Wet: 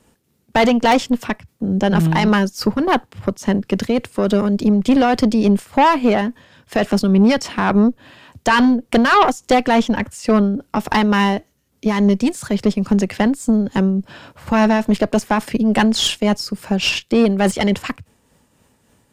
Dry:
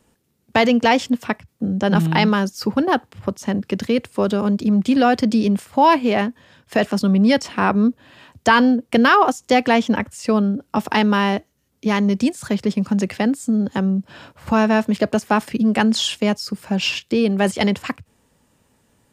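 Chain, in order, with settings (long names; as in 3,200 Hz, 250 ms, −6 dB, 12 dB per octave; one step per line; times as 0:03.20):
shaped tremolo triangle 3.5 Hz, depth 45%
harmonic generator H 3 −14 dB, 5 −11 dB, 8 −19 dB, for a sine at −1 dBFS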